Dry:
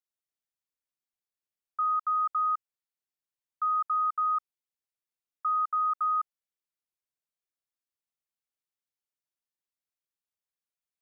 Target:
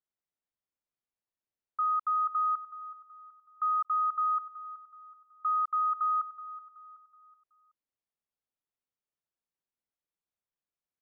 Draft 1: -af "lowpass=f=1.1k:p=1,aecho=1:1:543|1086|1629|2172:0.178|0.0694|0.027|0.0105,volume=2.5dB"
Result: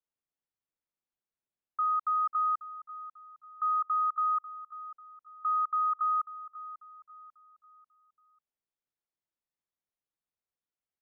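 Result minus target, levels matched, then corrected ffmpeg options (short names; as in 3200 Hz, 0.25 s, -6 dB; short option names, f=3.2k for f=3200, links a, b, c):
echo 0.168 s late
-af "lowpass=f=1.1k:p=1,aecho=1:1:375|750|1125|1500:0.178|0.0694|0.027|0.0105,volume=2.5dB"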